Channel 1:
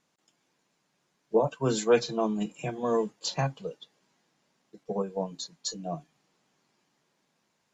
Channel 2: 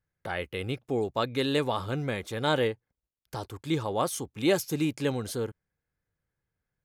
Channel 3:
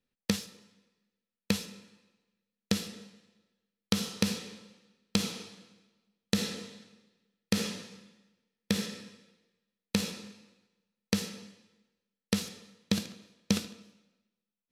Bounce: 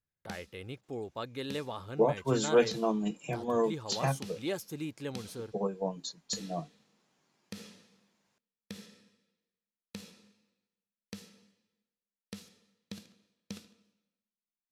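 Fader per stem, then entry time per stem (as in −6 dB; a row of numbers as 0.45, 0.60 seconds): −2.0, −10.5, −16.0 decibels; 0.65, 0.00, 0.00 seconds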